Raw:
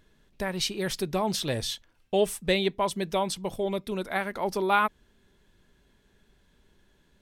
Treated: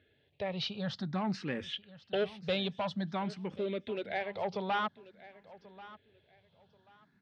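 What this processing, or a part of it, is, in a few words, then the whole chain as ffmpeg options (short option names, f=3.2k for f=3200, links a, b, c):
barber-pole phaser into a guitar amplifier: -filter_complex "[0:a]asplit=2[a][b];[b]afreqshift=0.51[c];[a][c]amix=inputs=2:normalize=1,asoftclip=type=tanh:threshold=-24.5dB,highpass=83,highpass=83,equalizer=f=100:t=q:w=4:g=8,equalizer=f=350:t=q:w=4:g=-5,equalizer=f=1k:t=q:w=4:g=-7,lowpass=f=3.8k:w=0.5412,lowpass=f=3.8k:w=1.3066,asettb=1/sr,asplit=3[d][e][f];[d]atrim=end=1.734[g];[e]atrim=start=1.73:end=2.15,asetpts=PTS-STARTPTS,afade=t=in:d=0.004:c=qsin,afade=t=out:st=0.416:d=0.004:c=qsin,equalizer=f=3k:w=4:g=14.5[h];[f]atrim=start=2.146[i];[g][h]acrossfade=d=0.004:c1=hsin:c2=qsin[j];[j][i]acrossfade=d=0.004:c1=qsin:c2=hsin,aecho=1:1:1086|2172:0.119|0.0285"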